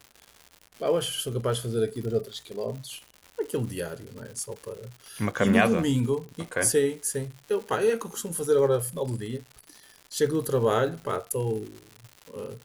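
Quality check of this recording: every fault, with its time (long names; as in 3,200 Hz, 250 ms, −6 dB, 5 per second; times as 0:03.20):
surface crackle 200 per second −36 dBFS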